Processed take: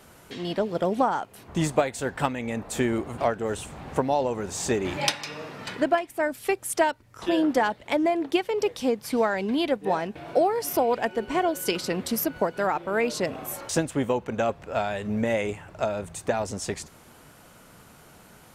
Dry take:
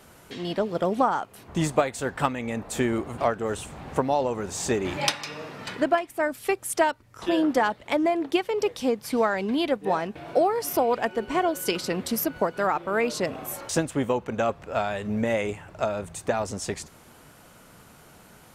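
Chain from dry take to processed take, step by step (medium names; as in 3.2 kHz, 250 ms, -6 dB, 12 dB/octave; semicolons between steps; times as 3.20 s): dynamic bell 1.2 kHz, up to -5 dB, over -44 dBFS, Q 5.1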